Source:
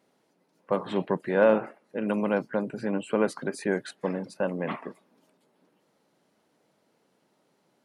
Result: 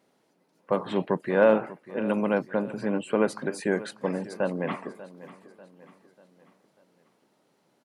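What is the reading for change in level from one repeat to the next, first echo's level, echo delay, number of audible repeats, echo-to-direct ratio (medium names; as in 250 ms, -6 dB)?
-6.5 dB, -17.0 dB, 592 ms, 3, -16.0 dB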